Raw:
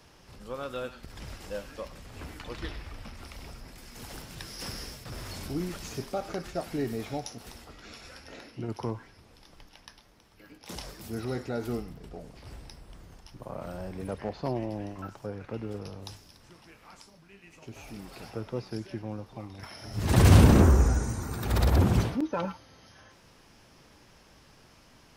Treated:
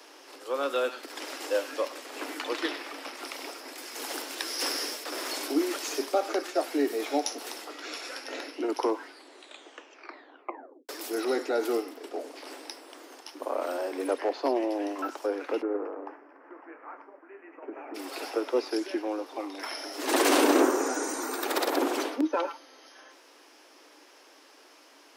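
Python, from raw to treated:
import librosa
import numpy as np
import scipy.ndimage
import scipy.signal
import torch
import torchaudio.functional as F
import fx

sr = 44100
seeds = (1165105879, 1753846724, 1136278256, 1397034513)

y = fx.cheby2_lowpass(x, sr, hz=3500.0, order=4, stop_db=40, at=(15.61, 17.94), fade=0.02)
y = fx.edit(y, sr, fx.tape_stop(start_s=8.95, length_s=1.94), tone=tone)
y = scipy.signal.sosfilt(scipy.signal.butter(16, 270.0, 'highpass', fs=sr, output='sos'), y)
y = fx.rider(y, sr, range_db=3, speed_s=0.5)
y = y * 10.0 ** (6.5 / 20.0)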